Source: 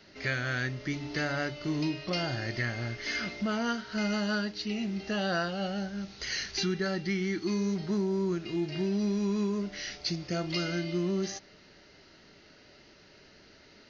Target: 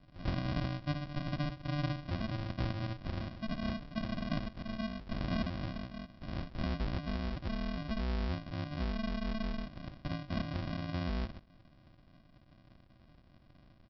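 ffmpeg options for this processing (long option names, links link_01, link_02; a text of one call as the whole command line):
ffmpeg -i in.wav -af "aecho=1:1:7.5:0.42,aresample=11025,acrusher=samples=25:mix=1:aa=0.000001,aresample=44100,volume=-4.5dB" out.wav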